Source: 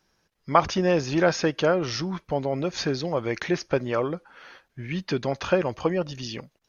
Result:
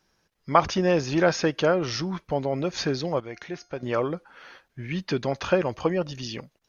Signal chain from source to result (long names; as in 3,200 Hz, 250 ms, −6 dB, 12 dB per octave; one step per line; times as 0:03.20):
0:03.20–0:03.83: tuned comb filter 710 Hz, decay 0.37 s, mix 70%